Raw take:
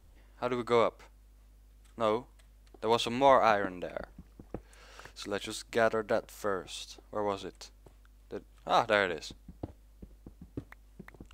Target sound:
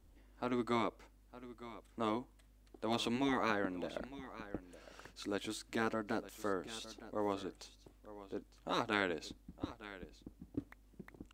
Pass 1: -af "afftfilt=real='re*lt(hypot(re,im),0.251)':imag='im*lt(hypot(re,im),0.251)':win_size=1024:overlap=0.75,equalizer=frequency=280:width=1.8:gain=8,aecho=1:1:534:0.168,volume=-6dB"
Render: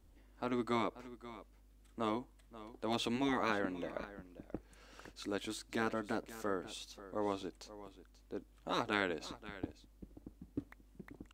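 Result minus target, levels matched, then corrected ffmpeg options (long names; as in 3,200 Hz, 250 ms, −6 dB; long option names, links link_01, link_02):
echo 376 ms early
-af "afftfilt=real='re*lt(hypot(re,im),0.251)':imag='im*lt(hypot(re,im),0.251)':win_size=1024:overlap=0.75,equalizer=frequency=280:width=1.8:gain=8,aecho=1:1:910:0.168,volume=-6dB"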